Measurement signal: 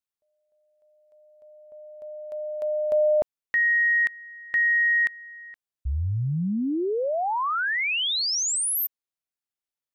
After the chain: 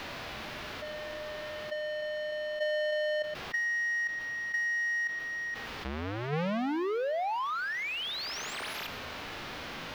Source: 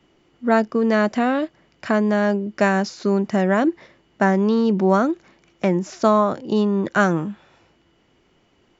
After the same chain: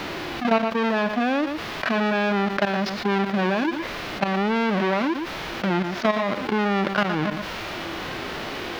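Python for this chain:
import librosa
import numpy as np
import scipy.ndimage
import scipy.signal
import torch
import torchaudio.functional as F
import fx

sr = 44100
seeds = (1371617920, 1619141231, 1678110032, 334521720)

y = fx.halfwave_hold(x, sr)
y = fx.highpass(y, sr, hz=730.0, slope=6)
y = fx.peak_eq(y, sr, hz=930.0, db=-2.0, octaves=0.82)
y = fx.level_steps(y, sr, step_db=16)
y = fx.transient(y, sr, attack_db=6, sustain_db=-9)
y = fx.dmg_noise_colour(y, sr, seeds[0], colour='white', level_db=-55.0)
y = fx.hpss(y, sr, part='percussive', gain_db=-12)
y = fx.air_absorb(y, sr, metres=300.0)
y = y + 10.0 ** (-19.0 / 20.0) * np.pad(y, (int(117 * sr / 1000.0), 0))[:len(y)]
y = fx.env_flatten(y, sr, amount_pct=70)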